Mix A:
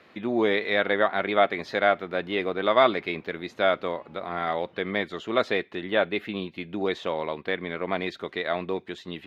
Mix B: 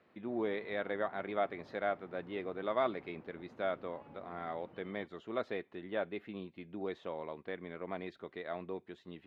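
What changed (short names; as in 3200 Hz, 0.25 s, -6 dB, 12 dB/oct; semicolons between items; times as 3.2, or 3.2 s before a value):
speech -11.5 dB; master: add high shelf 2200 Hz -11.5 dB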